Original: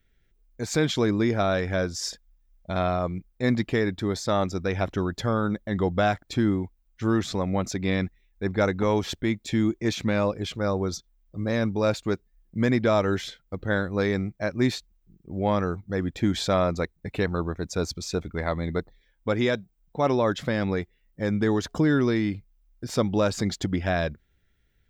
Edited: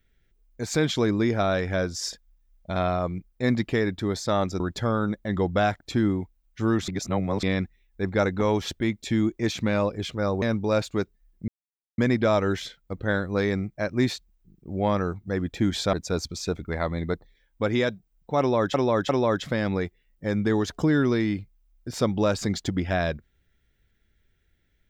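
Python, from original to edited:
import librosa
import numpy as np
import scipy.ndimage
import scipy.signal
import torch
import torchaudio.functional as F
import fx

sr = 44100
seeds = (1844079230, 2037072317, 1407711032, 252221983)

y = fx.edit(x, sr, fx.cut(start_s=4.6, length_s=0.42),
    fx.reverse_span(start_s=7.3, length_s=0.55),
    fx.cut(start_s=10.84, length_s=0.7),
    fx.insert_silence(at_s=12.6, length_s=0.5),
    fx.cut(start_s=16.55, length_s=1.04),
    fx.repeat(start_s=20.05, length_s=0.35, count=3), tone=tone)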